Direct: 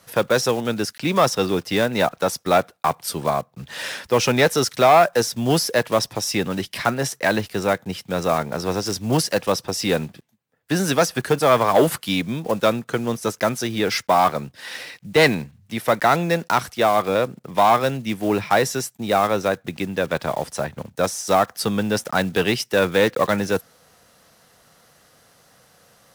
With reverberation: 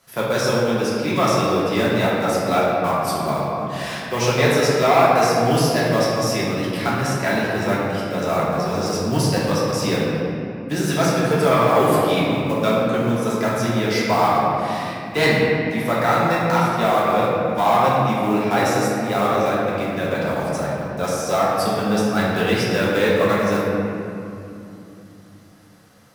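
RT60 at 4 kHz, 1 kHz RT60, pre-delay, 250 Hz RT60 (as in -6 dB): 1.6 s, 2.7 s, 3 ms, 4.6 s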